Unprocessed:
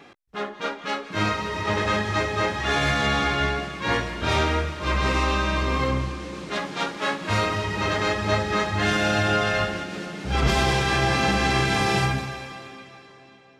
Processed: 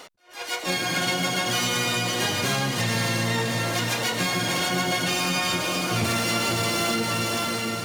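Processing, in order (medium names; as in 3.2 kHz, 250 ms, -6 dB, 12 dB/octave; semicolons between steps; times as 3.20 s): dynamic bell 570 Hz, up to -5 dB, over -42 dBFS, Q 3.3; on a send: echo that smears into a reverb 982 ms, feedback 47%, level -7.5 dB; on the sum: compression 6:1, threshold -24 dBFS, peak gain reduction 8.5 dB; harmony voices +7 st -7 dB, +12 st -6 dB; in parallel at -8 dB: hard clipper -29.5 dBFS, distortion -7 dB; on the sum: speed mistake 45 rpm record played at 78 rpm; attacks held to a fixed rise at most 160 dB/s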